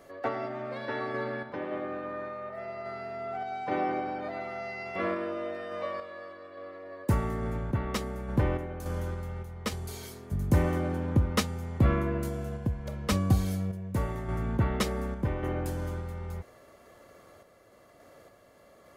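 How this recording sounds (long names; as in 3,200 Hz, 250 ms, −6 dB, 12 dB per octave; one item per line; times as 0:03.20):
sample-and-hold tremolo 3.5 Hz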